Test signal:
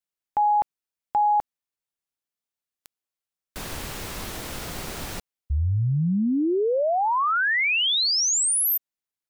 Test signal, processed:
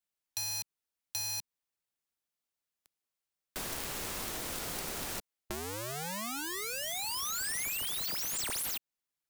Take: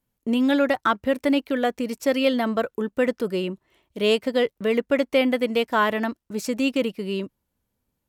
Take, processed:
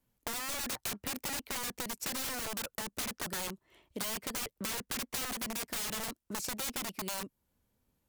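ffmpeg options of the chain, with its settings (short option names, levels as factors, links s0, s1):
-filter_complex "[0:a]aeval=exprs='(mod(15*val(0)+1,2)-1)/15':c=same,acrossover=split=210|5900[s0][s1][s2];[s0]acompressor=threshold=0.00355:ratio=4[s3];[s1]acompressor=threshold=0.01:ratio=4[s4];[s2]acompressor=threshold=0.0158:ratio=4[s5];[s3][s4][s5]amix=inputs=3:normalize=0"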